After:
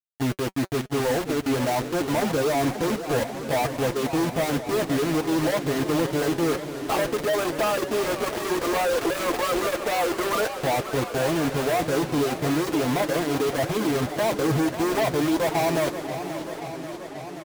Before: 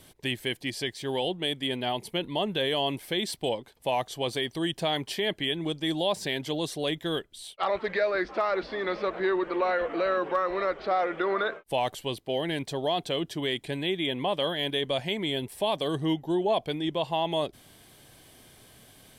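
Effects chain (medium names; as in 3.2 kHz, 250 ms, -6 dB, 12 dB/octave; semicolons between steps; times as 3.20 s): reverb removal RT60 0.76 s; low-pass 1.2 kHz 24 dB/octave; companded quantiser 2-bit; tempo 1.1×; comb of notches 190 Hz; delay 699 ms -16 dB; modulated delay 534 ms, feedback 75%, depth 166 cents, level -11.5 dB; trim +4 dB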